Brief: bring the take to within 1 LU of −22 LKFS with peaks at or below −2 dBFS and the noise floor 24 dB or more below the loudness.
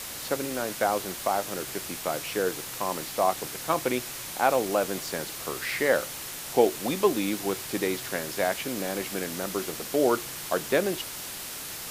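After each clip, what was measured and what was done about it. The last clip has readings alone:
background noise floor −38 dBFS; target noise floor −53 dBFS; integrated loudness −28.5 LKFS; sample peak −7.0 dBFS; target loudness −22.0 LKFS
→ broadband denoise 15 dB, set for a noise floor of −38 dBFS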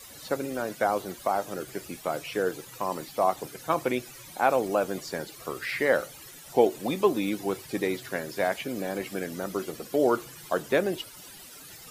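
background noise floor −47 dBFS; target noise floor −53 dBFS
→ broadband denoise 6 dB, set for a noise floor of −47 dBFS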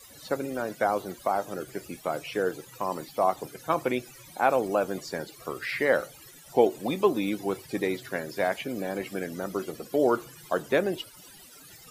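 background noise floor −50 dBFS; target noise floor −53 dBFS
→ broadband denoise 6 dB, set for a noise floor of −50 dBFS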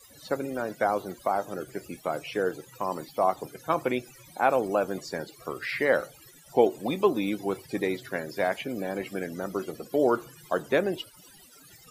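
background noise floor −53 dBFS; integrated loudness −29.0 LKFS; sample peak −7.0 dBFS; target loudness −22.0 LKFS
→ level +7 dB
brickwall limiter −2 dBFS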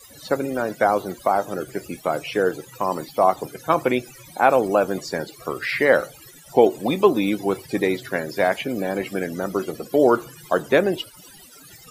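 integrated loudness −22.0 LKFS; sample peak −2.0 dBFS; background noise floor −46 dBFS

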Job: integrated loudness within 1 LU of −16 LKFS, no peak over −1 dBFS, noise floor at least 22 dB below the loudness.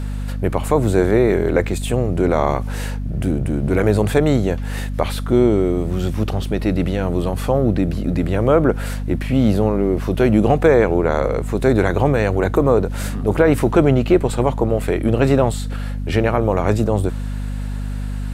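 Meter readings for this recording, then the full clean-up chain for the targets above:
mains hum 50 Hz; hum harmonics up to 250 Hz; level of the hum −22 dBFS; integrated loudness −18.5 LKFS; sample peak −2.0 dBFS; target loudness −16.0 LKFS
→ mains-hum notches 50/100/150/200/250 Hz
level +2.5 dB
brickwall limiter −1 dBFS

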